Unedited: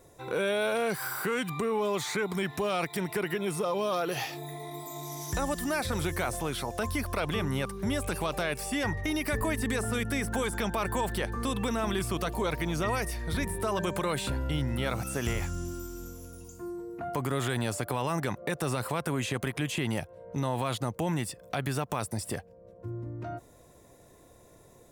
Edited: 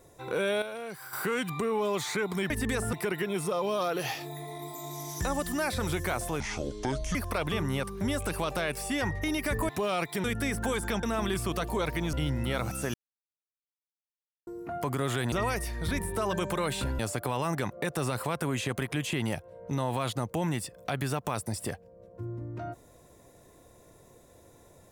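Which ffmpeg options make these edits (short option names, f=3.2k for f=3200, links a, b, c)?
-filter_complex "[0:a]asplit=15[a][b][c][d][e][f][g][h][i][j][k][l][m][n][o];[a]atrim=end=0.622[p];[b]atrim=start=0.618:end=1.132,asetpts=PTS-STARTPTS,volume=-10dB[q];[c]atrim=start=1.128:end=2.502[r];[d]atrim=start=9.508:end=9.942[s];[e]atrim=start=3.048:end=6.524[t];[f]atrim=start=6.52:end=6.97,asetpts=PTS-STARTPTS,asetrate=26460,aresample=44100[u];[g]atrim=start=6.966:end=9.512[v];[h]atrim=start=2.498:end=3.052[w];[i]atrim=start=9.938:end=10.732[x];[j]atrim=start=11.678:end=12.782[y];[k]atrim=start=14.448:end=15.26,asetpts=PTS-STARTPTS,afade=t=out:st=0.808:d=0.004:c=hsin[z];[l]atrim=start=15.26:end=16.79,asetpts=PTS-STARTPTS,volume=0[aa];[m]atrim=start=16.79:end=17.642,asetpts=PTS-STARTPTS,afade=t=in:d=0.004:c=hsin[ab];[n]atrim=start=12.778:end=14.452[ac];[o]atrim=start=17.638[ad];[p][q]acrossfade=d=0.004:c1=hsin:c2=hsin[ae];[ae][r]acrossfade=d=0.004:c1=hsin:c2=hsin[af];[af][s]acrossfade=d=0.004:c1=hsin:c2=hsin[ag];[ag][t]acrossfade=d=0.004:c1=hsin:c2=hsin[ah];[ah][u]acrossfade=d=0.004:c1=hsin:c2=hsin[ai];[ai][v]acrossfade=d=0.004:c1=hsin:c2=hsin[aj];[aj][w]acrossfade=d=0.004:c1=hsin:c2=hsin[ak];[ak][x]acrossfade=d=0.004:c1=hsin:c2=hsin[al];[al][y]acrossfade=d=0.004:c1=hsin:c2=hsin[am];[z][aa][ab]concat=n=3:v=0:a=1[an];[am][an]acrossfade=d=0.004:c1=hsin:c2=hsin[ao];[ao][ac]acrossfade=d=0.004:c1=hsin:c2=hsin[ap];[ap][ad]acrossfade=d=0.004:c1=hsin:c2=hsin"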